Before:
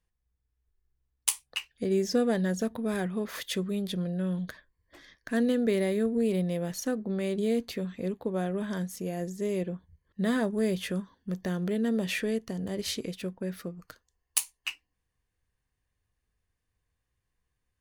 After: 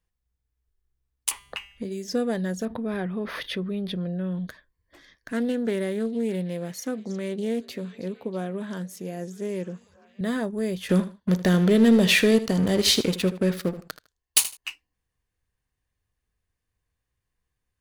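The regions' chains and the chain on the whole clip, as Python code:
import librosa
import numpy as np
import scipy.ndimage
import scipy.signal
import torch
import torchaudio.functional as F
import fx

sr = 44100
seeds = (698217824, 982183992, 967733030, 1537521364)

y = fx.chain(x, sr, fx.low_shelf(hz=380.0, db=3.5),
    fx.comb_fb(f0_hz=200.0, decay_s=0.46, harmonics='all', damping=0.0, mix_pct=70),
    fx.band_squash(depth_pct=100), at=(1.31, 2.08))
y = fx.chain(y, sr, fx.moving_average(points=6),
    fx.env_flatten(amount_pct=50), at=(2.65, 4.47))
y = fx.chain(y, sr, fx.highpass(hz=120.0, slope=12),
    fx.echo_stepped(ms=321, hz=5500.0, octaves=-0.7, feedback_pct=70, wet_db=-12),
    fx.doppler_dist(depth_ms=0.13), at=(5.32, 10.21))
y = fx.chain(y, sr, fx.peak_eq(hz=3800.0, db=4.5, octaves=0.86),
    fx.leveller(passes=3),
    fx.echo_feedback(ms=78, feedback_pct=20, wet_db=-14), at=(10.89, 14.57))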